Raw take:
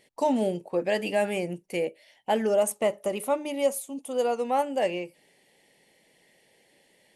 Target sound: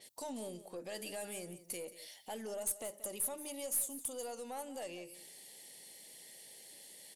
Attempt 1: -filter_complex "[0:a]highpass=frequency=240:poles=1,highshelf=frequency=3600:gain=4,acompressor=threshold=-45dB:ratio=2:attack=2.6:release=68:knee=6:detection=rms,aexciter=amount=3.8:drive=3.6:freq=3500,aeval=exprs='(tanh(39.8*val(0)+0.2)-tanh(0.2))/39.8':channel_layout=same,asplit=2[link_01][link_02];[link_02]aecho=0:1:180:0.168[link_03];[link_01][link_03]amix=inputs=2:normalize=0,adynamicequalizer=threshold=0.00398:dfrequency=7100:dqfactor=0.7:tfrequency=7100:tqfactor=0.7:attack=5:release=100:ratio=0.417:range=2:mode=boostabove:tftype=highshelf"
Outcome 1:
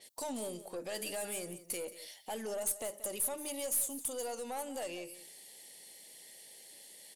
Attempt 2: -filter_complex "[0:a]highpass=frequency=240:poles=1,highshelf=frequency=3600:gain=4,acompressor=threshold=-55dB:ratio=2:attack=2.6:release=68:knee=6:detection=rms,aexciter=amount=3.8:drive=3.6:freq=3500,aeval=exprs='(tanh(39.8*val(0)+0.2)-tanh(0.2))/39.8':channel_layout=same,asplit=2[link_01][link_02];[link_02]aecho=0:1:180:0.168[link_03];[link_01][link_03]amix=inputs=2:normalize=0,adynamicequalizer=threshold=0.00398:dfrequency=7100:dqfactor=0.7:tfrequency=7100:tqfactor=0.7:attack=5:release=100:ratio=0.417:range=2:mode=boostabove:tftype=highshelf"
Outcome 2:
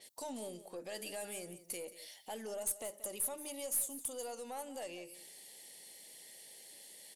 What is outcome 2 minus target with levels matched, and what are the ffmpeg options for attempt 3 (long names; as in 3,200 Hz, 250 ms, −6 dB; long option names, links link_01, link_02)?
125 Hz band −2.5 dB
-filter_complex "[0:a]highpass=frequency=97:poles=1,highshelf=frequency=3600:gain=4,acompressor=threshold=-55dB:ratio=2:attack=2.6:release=68:knee=6:detection=rms,aexciter=amount=3.8:drive=3.6:freq=3500,aeval=exprs='(tanh(39.8*val(0)+0.2)-tanh(0.2))/39.8':channel_layout=same,asplit=2[link_01][link_02];[link_02]aecho=0:1:180:0.168[link_03];[link_01][link_03]amix=inputs=2:normalize=0,adynamicequalizer=threshold=0.00398:dfrequency=7100:dqfactor=0.7:tfrequency=7100:tqfactor=0.7:attack=5:release=100:ratio=0.417:range=2:mode=boostabove:tftype=highshelf"